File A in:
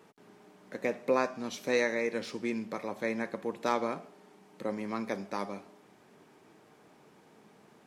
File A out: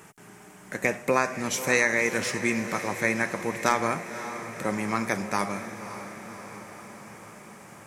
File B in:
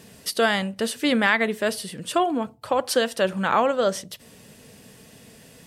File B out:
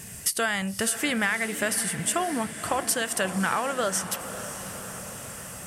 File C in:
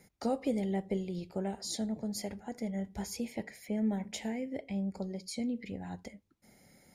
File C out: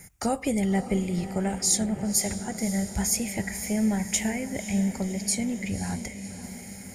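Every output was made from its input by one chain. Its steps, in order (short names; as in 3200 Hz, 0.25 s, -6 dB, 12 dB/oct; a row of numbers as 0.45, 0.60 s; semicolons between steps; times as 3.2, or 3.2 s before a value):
graphic EQ 250/500/1000/4000/8000 Hz -10/-11/-5/-12/+6 dB; compressor, threshold -33 dBFS; diffused feedback echo 0.554 s, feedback 66%, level -11.5 dB; match loudness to -27 LUFS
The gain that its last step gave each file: +16.5, +10.0, +17.0 dB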